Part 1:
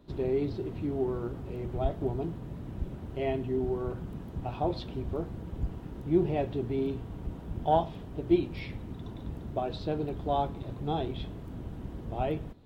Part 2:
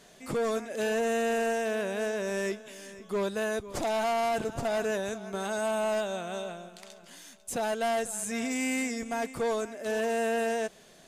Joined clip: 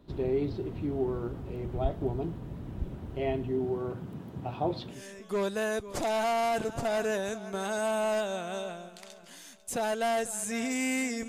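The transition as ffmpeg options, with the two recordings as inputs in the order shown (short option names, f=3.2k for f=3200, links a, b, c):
-filter_complex "[0:a]asettb=1/sr,asplit=3[a][b][c];[a]atrim=end=3.514[d];[b]atrim=start=3.51:end=5.03,asetpts=PTS-STARTPTS,afade=t=in:d=0.004:c=qsin,afade=t=out:st=1.516:d=0.004:c=qsin,highpass=f=100:w=0.5412,highpass=f=100:w=1.3066[e];[c]atrim=start=5.026[f];[d][e]acrossfade=d=0.004:c1=hsin:c2=qsin[g];[g][f]acrossfade=d=0.004:c1=qsin:c2=hsin,apad=whole_dur=11.28,atrim=end=11.28,atrim=end=5.03,asetpts=PTS-STARTPTS[h];[1:a]atrim=start=2.67:end=9.08,asetpts=PTS-STARTPTS[i];[h][i]acrossfade=d=0.16:c1=tri:c2=tri"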